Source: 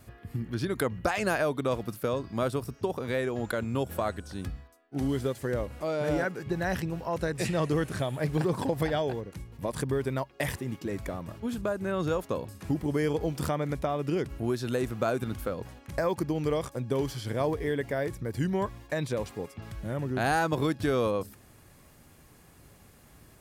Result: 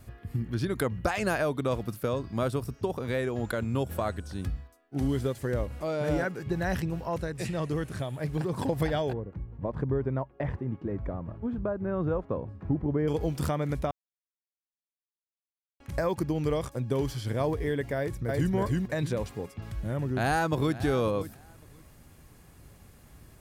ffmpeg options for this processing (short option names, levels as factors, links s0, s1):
-filter_complex "[0:a]asettb=1/sr,asplit=3[s0][s1][s2];[s0]atrim=end=9.134[s3];[s1]atrim=start=9.13:end=13.08,asetpts=PTS-STARTPTS,afade=t=in:d=0.004:c=qsin,afade=t=out:st=3.946:d=0.004:c=qsin,lowpass=1200[s4];[s2]atrim=start=13.076[s5];[s3][s4]acrossfade=d=0.004:c1=hsin:c2=qsin[s6];[s6][s5]acrossfade=d=0.004:c1=qsin:c2=hsin,asplit=2[s7][s8];[s8]afade=t=in:st=17.96:d=0.01,afade=t=out:st=18.53:d=0.01,aecho=0:1:320|640|960|1280:0.891251|0.222813|0.0557032|0.0139258[s9];[s7][s9]amix=inputs=2:normalize=0,asplit=2[s10][s11];[s11]afade=t=in:st=20.09:d=0.01,afade=t=out:st=20.81:d=0.01,aecho=0:1:550|1100:0.177828|0.0266742[s12];[s10][s12]amix=inputs=2:normalize=0,asplit=5[s13][s14][s15][s16][s17];[s13]atrim=end=7.212[s18];[s14]atrim=start=7.208:end=8.562,asetpts=PTS-STARTPTS,volume=0.631[s19];[s15]atrim=start=8.558:end=13.91,asetpts=PTS-STARTPTS,afade=t=out:st=5.348:d=0.004:c=hsin[s20];[s16]atrim=start=13.91:end=15.8,asetpts=PTS-STARTPTS,volume=0[s21];[s17]atrim=start=15.8,asetpts=PTS-STARTPTS,afade=t=in:d=0.004:c=hsin[s22];[s18][s19]acrossfade=d=0.004:c1=hsin:c2=hsin[s23];[s20][s21][s22]concat=n=3:v=0:a=1[s24];[s23][s24]acrossfade=d=0.004:c1=hsin:c2=hsin,lowshelf=f=120:g=8,volume=0.891"